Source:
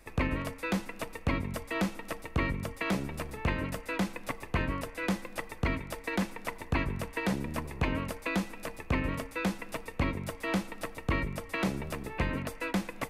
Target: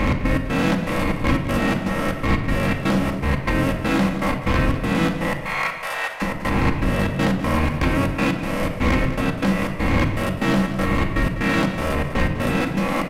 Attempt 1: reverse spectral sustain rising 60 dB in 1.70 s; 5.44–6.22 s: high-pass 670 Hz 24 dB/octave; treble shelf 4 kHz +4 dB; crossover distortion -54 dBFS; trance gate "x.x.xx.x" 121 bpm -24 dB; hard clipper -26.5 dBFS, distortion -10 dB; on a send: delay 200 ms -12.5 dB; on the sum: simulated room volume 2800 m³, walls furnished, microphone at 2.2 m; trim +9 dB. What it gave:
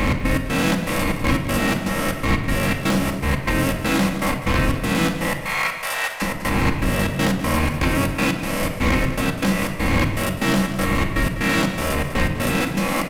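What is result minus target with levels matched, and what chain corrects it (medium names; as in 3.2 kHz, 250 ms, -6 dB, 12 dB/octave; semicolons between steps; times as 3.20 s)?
8 kHz band +8.0 dB; crossover distortion: distortion +8 dB
reverse spectral sustain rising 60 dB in 1.70 s; 5.44–6.22 s: high-pass 670 Hz 24 dB/octave; treble shelf 4 kHz -8 dB; crossover distortion -63 dBFS; trance gate "x.x.xx.x" 121 bpm -24 dB; hard clipper -26.5 dBFS, distortion -10 dB; on a send: delay 200 ms -12.5 dB; on the sum: simulated room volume 2800 m³, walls furnished, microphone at 2.2 m; trim +9 dB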